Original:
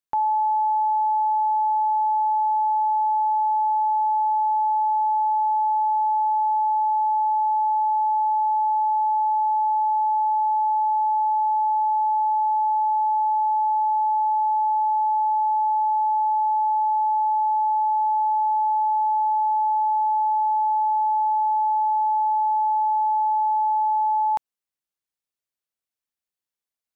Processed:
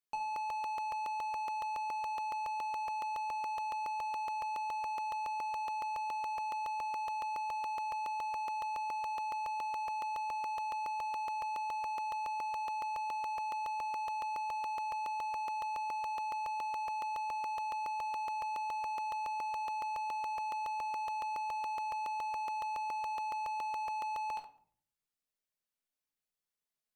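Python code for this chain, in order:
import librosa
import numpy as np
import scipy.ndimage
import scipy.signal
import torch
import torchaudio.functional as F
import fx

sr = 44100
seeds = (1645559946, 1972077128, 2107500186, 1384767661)

y = 10.0 ** (-30.5 / 20.0) * np.tanh(x / 10.0 ** (-30.5 / 20.0))
y = fx.doubler(y, sr, ms=18.0, db=-8)
y = fx.room_shoebox(y, sr, seeds[0], volume_m3=710.0, walls='furnished', distance_m=1.4)
y = fx.buffer_crackle(y, sr, first_s=0.36, period_s=0.14, block=64, kind='repeat')
y = y * librosa.db_to_amplitude(-4.5)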